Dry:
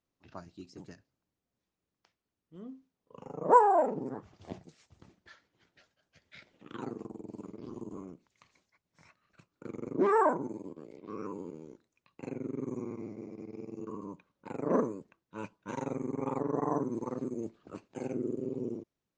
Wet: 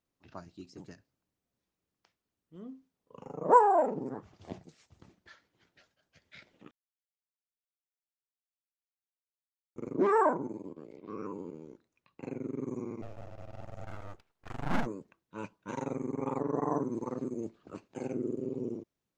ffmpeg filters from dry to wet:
-filter_complex "[0:a]asettb=1/sr,asplit=3[s0][s1][s2];[s0]atrim=end=10.294[s3];[s1]atrim=start=10.29:end=12.3,asetpts=PTS-STARTPTS,afade=t=in:d=0.004:c=qsin,afade=t=out:st=2.006:d=0.004:c=qsin,highshelf=f=6200:g=-8[s4];[s2]atrim=start=12.296[s5];[s3][s4]acrossfade=d=0.004:c1=hsin:c2=qsin[s6];[s6][s5]acrossfade=d=0.004:c1=qsin:c2=hsin,asplit=3[s7][s8][s9];[s7]afade=t=out:st=13.01:d=0.02[s10];[s8]aeval=exprs='abs(val(0))':c=same,afade=t=in:st=13.01:d=0.02,afade=t=out:st=14.85:d=0.02[s11];[s9]afade=t=in:st=14.85:d=0.02[s12];[s10][s11][s12]amix=inputs=3:normalize=0,asplit=3[s13][s14][s15];[s13]atrim=end=6.71,asetpts=PTS-STARTPTS,afade=t=out:st=6.706:d=0.004:c=hsin[s16];[s14]atrim=start=6.71:end=9.76,asetpts=PTS-STARTPTS,volume=0[s17];[s15]atrim=start=9.76,asetpts=PTS-STARTPTS,afade=t=in:d=0.004:c=hsin[s18];[s16][s17][s18]concat=n=3:v=0:a=1"

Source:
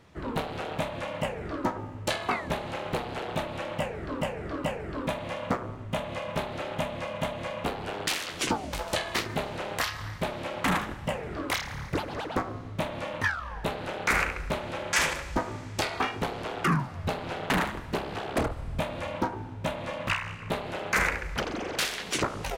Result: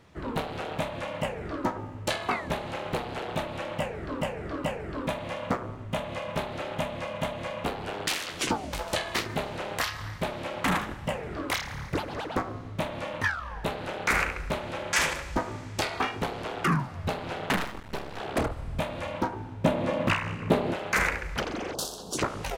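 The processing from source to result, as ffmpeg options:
-filter_complex "[0:a]asettb=1/sr,asplit=3[s0][s1][s2];[s0]atrim=end=17.564[s3];[s1]atrim=start=17.56:end=18.2,asetpts=PTS-STARTPTS,afade=t=in:d=0.004:c=qsin,afade=t=out:st=0.636:d=0.004:c=qsin,aeval=exprs='max(val(0),0)':c=same[s4];[s2]atrim=start=18.196[s5];[s3][s4]acrossfade=d=0.004:c1=hsin:c2=qsin[s6];[s6][s5]acrossfade=d=0.004:c1=qsin:c2=hsin,asettb=1/sr,asplit=3[s7][s8][s9];[s7]atrim=end=19.644[s10];[s8]atrim=start=19.64:end=20.74,asetpts=PTS-STARTPTS,afade=t=in:d=0.004:c=qsin,afade=t=out:st=1.096:d=0.004:c=qsin,equalizer=f=280:w=0.51:g=12[s11];[s9]atrim=start=20.736[s12];[s10][s11]acrossfade=d=0.004:c1=hsin:c2=qsin[s13];[s13][s12]acrossfade=d=0.004:c1=qsin:c2=hsin,asplit=3[s14][s15][s16];[s14]afade=t=out:st=21.73:d=0.02[s17];[s15]asuperstop=centerf=2100:order=4:qfactor=0.57,afade=t=in:st=21.73:d=0.02,afade=t=out:st=22.17:d=0.02[s18];[s16]afade=t=in:st=22.17:d=0.02[s19];[s17][s18][s19]amix=inputs=3:normalize=0"

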